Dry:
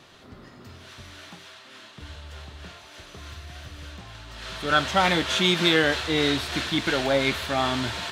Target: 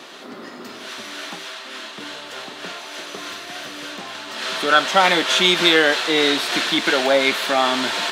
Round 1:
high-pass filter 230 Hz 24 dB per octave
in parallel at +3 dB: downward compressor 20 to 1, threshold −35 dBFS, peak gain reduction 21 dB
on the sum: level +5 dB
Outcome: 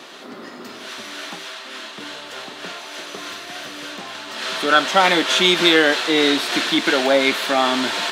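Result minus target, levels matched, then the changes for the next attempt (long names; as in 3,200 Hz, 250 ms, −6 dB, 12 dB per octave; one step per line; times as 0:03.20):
250 Hz band +2.5 dB
add after high-pass filter: dynamic equaliser 290 Hz, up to −4 dB, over −39 dBFS, Q 2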